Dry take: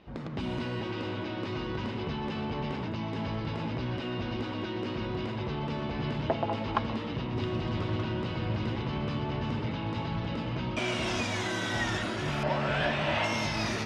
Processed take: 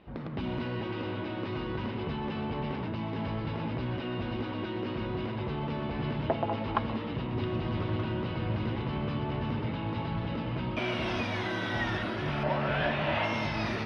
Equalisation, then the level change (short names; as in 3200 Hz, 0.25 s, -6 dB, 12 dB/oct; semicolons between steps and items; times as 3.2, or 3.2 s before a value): running mean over 6 samples; 0.0 dB